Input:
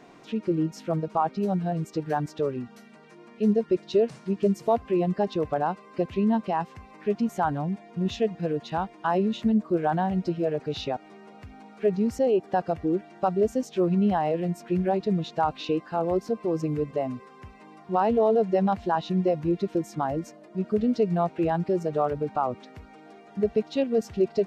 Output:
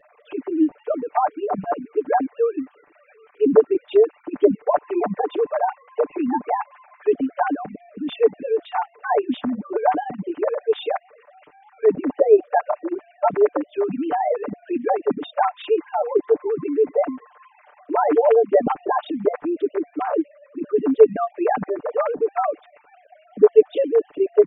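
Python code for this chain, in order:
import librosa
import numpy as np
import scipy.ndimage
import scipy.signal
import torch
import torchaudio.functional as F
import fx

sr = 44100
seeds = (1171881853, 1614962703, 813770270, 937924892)

y = fx.sine_speech(x, sr)
y = y + 0.97 * np.pad(y, (int(6.8 * sr / 1000.0), 0))[:len(y)]
y = fx.hpss(y, sr, part='percussive', gain_db=6)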